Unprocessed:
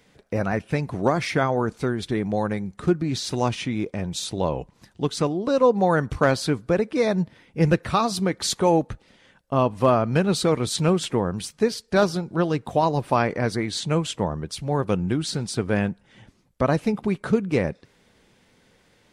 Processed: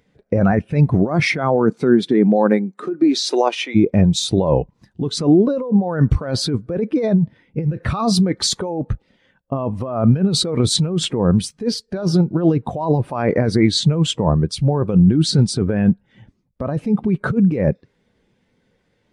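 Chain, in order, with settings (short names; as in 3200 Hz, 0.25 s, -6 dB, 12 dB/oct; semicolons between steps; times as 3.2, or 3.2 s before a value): 1.2–3.74 HPF 100 Hz -> 430 Hz 24 dB/oct; negative-ratio compressor -26 dBFS, ratio -1; spectral expander 1.5:1; gain +7 dB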